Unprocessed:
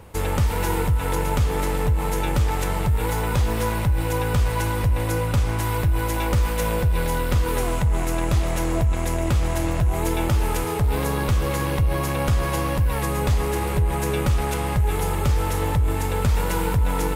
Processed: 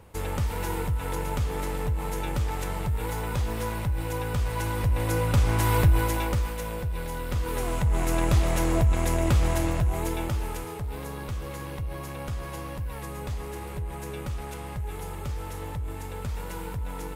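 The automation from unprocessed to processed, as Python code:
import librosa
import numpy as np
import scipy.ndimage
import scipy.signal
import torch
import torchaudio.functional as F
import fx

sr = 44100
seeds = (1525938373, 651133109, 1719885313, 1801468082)

y = fx.gain(x, sr, db=fx.line((4.4, -7.0), (5.84, 2.0), (6.63, -10.0), (7.13, -10.0), (8.16, -1.0), (9.48, -1.0), (10.86, -12.5)))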